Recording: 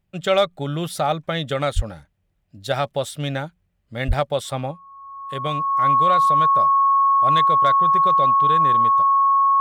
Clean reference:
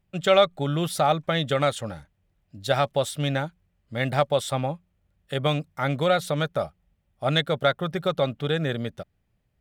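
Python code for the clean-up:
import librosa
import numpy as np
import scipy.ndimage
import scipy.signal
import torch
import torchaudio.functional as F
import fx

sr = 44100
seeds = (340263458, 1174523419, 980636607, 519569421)

y = fx.fix_declip(x, sr, threshold_db=-8.5)
y = fx.notch(y, sr, hz=1100.0, q=30.0)
y = fx.fix_deplosive(y, sr, at_s=(1.75, 4.07))
y = fx.fix_level(y, sr, at_s=4.71, step_db=3.5)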